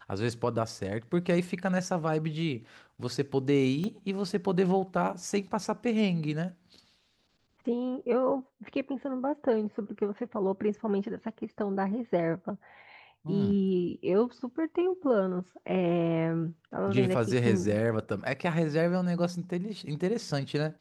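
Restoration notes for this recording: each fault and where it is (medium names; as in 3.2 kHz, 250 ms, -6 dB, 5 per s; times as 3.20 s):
3.84 s: pop -23 dBFS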